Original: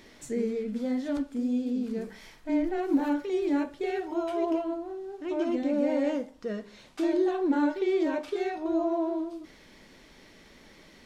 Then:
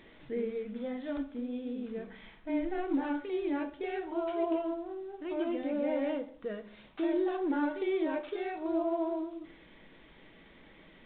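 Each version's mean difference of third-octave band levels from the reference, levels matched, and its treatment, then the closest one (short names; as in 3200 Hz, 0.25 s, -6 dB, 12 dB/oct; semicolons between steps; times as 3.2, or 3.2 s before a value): 4.0 dB: dynamic EQ 180 Hz, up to -5 dB, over -41 dBFS, Q 0.74; shoebox room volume 810 m³, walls furnished, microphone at 0.64 m; gain -3 dB; µ-law 64 kbps 8000 Hz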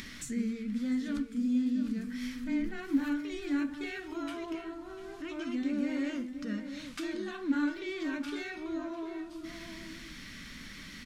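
7.5 dB: band shelf 570 Hz -16 dB; upward compressor, threshold -36 dBFS; outdoor echo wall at 120 m, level -9 dB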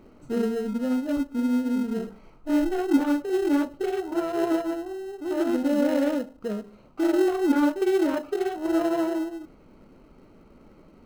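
5.5 dB: Wiener smoothing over 25 samples; in parallel at -11.5 dB: sample-and-hold 38×; on the sum: bell 1300 Hz +12 dB 0.23 oct; gain +3 dB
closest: first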